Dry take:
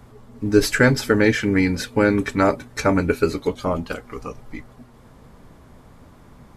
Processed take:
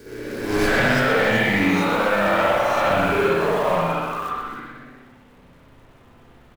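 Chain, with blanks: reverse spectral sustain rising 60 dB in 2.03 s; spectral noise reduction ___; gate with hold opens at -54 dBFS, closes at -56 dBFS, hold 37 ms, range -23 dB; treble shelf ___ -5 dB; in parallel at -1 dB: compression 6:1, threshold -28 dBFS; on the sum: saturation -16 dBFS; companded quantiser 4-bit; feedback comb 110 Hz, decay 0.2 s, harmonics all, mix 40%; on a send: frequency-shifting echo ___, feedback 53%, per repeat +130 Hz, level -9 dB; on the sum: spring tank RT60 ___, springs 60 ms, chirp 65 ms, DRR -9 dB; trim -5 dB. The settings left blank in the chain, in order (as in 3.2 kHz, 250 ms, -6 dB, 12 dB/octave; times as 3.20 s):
17 dB, 4.7 kHz, 125 ms, 1.2 s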